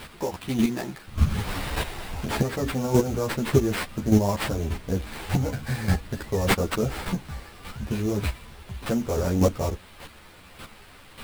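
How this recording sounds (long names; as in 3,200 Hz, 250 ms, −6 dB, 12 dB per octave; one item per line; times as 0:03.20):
a quantiser's noise floor 8 bits, dither triangular
chopped level 1.7 Hz, depth 65%, duty 10%
aliases and images of a low sample rate 6,400 Hz, jitter 20%
a shimmering, thickened sound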